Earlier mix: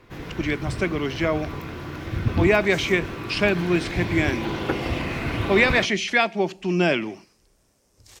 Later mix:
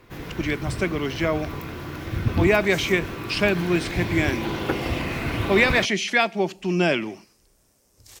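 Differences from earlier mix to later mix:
speech: send off
master: add high-shelf EQ 11,000 Hz +11.5 dB

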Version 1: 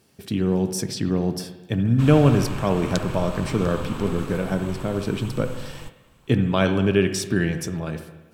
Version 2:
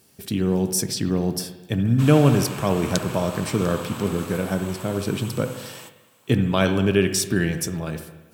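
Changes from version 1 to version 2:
background: add high-pass filter 320 Hz 24 dB per octave
master: add high-shelf EQ 6,800 Hz +11.5 dB

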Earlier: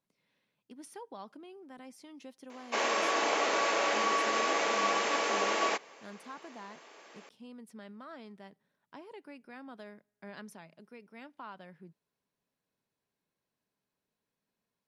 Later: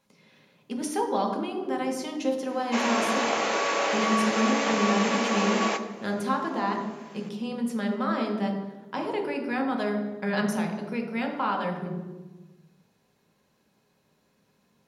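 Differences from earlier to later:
speech +11.5 dB
reverb: on, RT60 1.2 s

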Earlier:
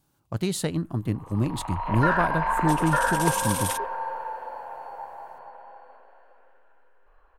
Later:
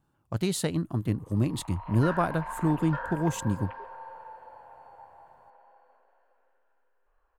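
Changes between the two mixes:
first sound −9.5 dB
second sound: muted
reverb: off

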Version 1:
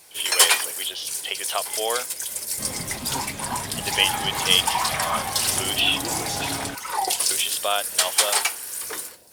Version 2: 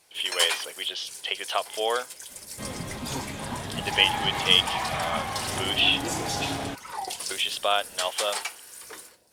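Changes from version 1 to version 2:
first sound −8.5 dB
master: add high-shelf EQ 11,000 Hz −11 dB

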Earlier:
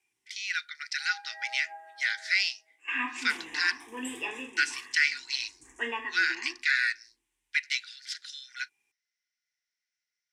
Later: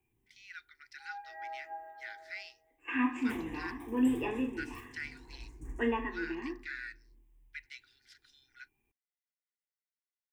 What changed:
speech −11.5 dB
master: remove meter weighting curve ITU-R 468

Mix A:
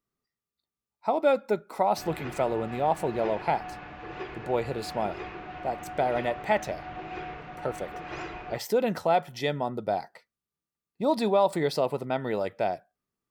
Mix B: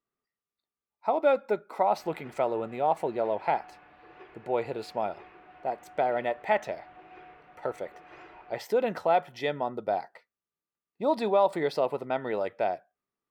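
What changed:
background −11.5 dB
master: add bass and treble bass −9 dB, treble −10 dB

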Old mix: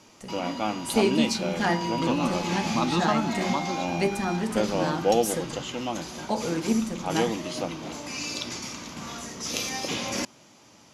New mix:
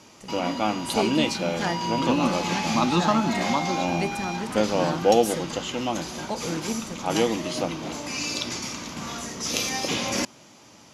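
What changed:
speech: send −10.0 dB
background +3.5 dB

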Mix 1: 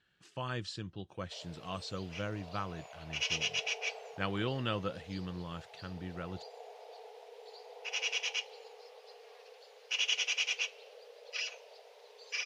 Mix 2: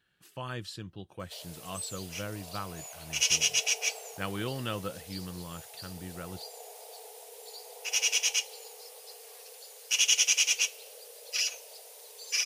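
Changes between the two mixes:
speech: remove low-pass filter 7,300 Hz 24 dB per octave
background: remove high-frequency loss of the air 250 metres

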